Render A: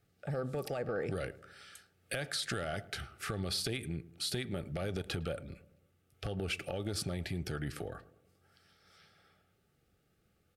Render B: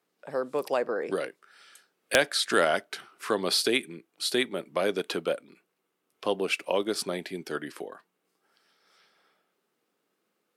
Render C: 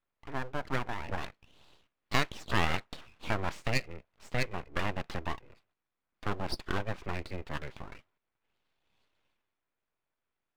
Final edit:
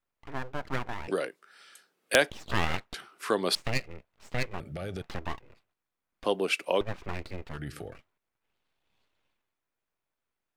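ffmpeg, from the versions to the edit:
-filter_complex "[1:a]asplit=3[a][b][c];[0:a]asplit=2[d][e];[2:a]asplit=6[f][g][h][i][j][k];[f]atrim=end=1.082[l];[a]atrim=start=1.078:end=2.302[m];[g]atrim=start=2.298:end=2.942[n];[b]atrim=start=2.938:end=3.552[o];[h]atrim=start=3.548:end=4.602[p];[d]atrim=start=4.598:end=5.022[q];[i]atrim=start=5.018:end=6.242[r];[c]atrim=start=6.238:end=6.812[s];[j]atrim=start=6.808:end=7.59[t];[e]atrim=start=7.49:end=7.99[u];[k]atrim=start=7.89[v];[l][m]acrossfade=d=0.004:c1=hsin:c2=hsin[w];[w][n]acrossfade=d=0.004:c1=hsin:c2=hsin[x];[x][o]acrossfade=d=0.004:c1=hsin:c2=hsin[y];[y][p]acrossfade=d=0.004:c1=hsin:c2=hsin[z];[z][q]acrossfade=d=0.004:c1=hsin:c2=hsin[aa];[aa][r]acrossfade=d=0.004:c1=hsin:c2=hsin[ab];[ab][s]acrossfade=d=0.004:c1=hsin:c2=hsin[ac];[ac][t]acrossfade=d=0.004:c1=hsin:c2=hsin[ad];[ad][u]acrossfade=d=0.1:c1=tri:c2=tri[ae];[ae][v]acrossfade=d=0.1:c1=tri:c2=tri"

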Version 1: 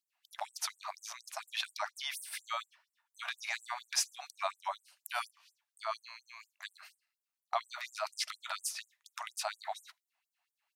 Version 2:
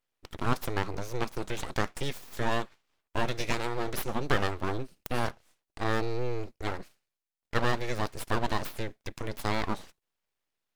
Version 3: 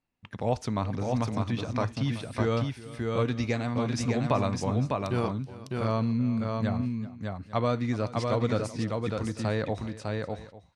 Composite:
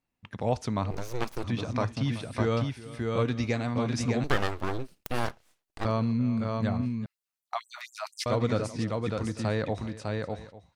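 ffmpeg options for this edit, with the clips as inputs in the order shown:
-filter_complex "[1:a]asplit=2[a][b];[2:a]asplit=4[c][d][e][f];[c]atrim=end=0.912[g];[a]atrim=start=0.908:end=1.442[h];[d]atrim=start=1.438:end=4.242[i];[b]atrim=start=4.238:end=5.852[j];[e]atrim=start=5.848:end=7.062[k];[0:a]atrim=start=7.058:end=8.262[l];[f]atrim=start=8.258[m];[g][h]acrossfade=d=0.004:c1=hsin:c2=hsin[n];[n][i]acrossfade=d=0.004:c1=hsin:c2=hsin[o];[o][j]acrossfade=d=0.004:c1=hsin:c2=hsin[p];[p][k]acrossfade=d=0.004:c1=hsin:c2=hsin[q];[q][l]acrossfade=d=0.004:c1=hsin:c2=hsin[r];[r][m]acrossfade=d=0.004:c1=hsin:c2=hsin"

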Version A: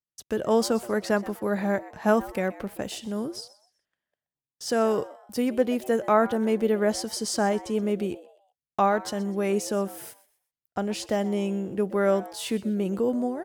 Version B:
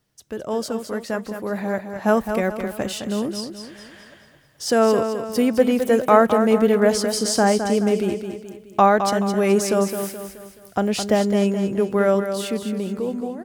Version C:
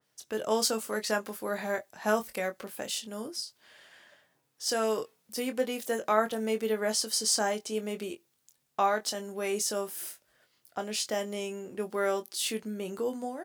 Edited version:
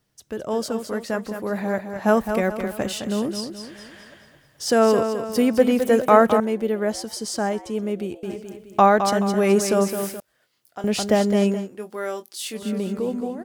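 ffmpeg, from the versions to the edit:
-filter_complex "[2:a]asplit=2[a][b];[1:a]asplit=4[c][d][e][f];[c]atrim=end=6.402[g];[0:a]atrim=start=6.398:end=8.232[h];[d]atrim=start=8.228:end=10.202[i];[a]atrim=start=10.198:end=10.842[j];[e]atrim=start=10.838:end=11.69[k];[b]atrim=start=11.53:end=12.68[l];[f]atrim=start=12.52[m];[g][h]acrossfade=d=0.004:c1=hsin:c2=hsin[n];[n][i]acrossfade=d=0.004:c1=hsin:c2=hsin[o];[o][j]acrossfade=d=0.004:c1=hsin:c2=hsin[p];[p][k]acrossfade=d=0.004:c1=hsin:c2=hsin[q];[q][l]acrossfade=d=0.16:c1=tri:c2=tri[r];[r][m]acrossfade=d=0.16:c1=tri:c2=tri"

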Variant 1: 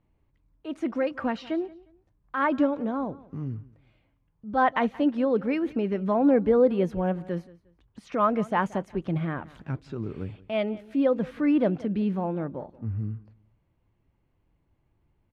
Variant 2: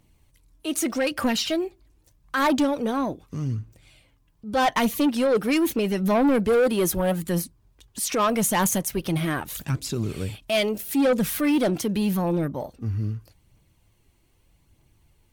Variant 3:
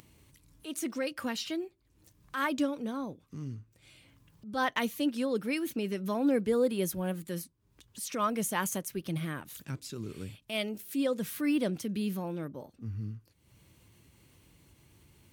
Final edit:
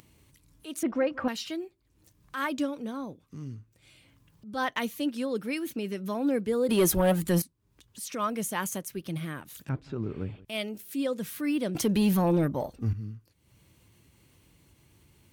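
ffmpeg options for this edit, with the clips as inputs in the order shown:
-filter_complex "[0:a]asplit=2[a][b];[1:a]asplit=2[c][d];[2:a]asplit=5[e][f][g][h][i];[e]atrim=end=0.832[j];[a]atrim=start=0.828:end=1.282[k];[f]atrim=start=1.278:end=6.692[l];[c]atrim=start=6.688:end=7.422[m];[g]atrim=start=7.418:end=9.692[n];[b]atrim=start=9.688:end=10.452[o];[h]atrim=start=10.448:end=11.752[p];[d]atrim=start=11.748:end=12.932[q];[i]atrim=start=12.928[r];[j][k]acrossfade=d=0.004:c1=hsin:c2=hsin[s];[s][l]acrossfade=d=0.004:c1=hsin:c2=hsin[t];[t][m]acrossfade=d=0.004:c1=hsin:c2=hsin[u];[u][n]acrossfade=d=0.004:c1=hsin:c2=hsin[v];[v][o]acrossfade=d=0.004:c1=hsin:c2=hsin[w];[w][p]acrossfade=d=0.004:c1=hsin:c2=hsin[x];[x][q]acrossfade=d=0.004:c1=hsin:c2=hsin[y];[y][r]acrossfade=d=0.004:c1=hsin:c2=hsin"

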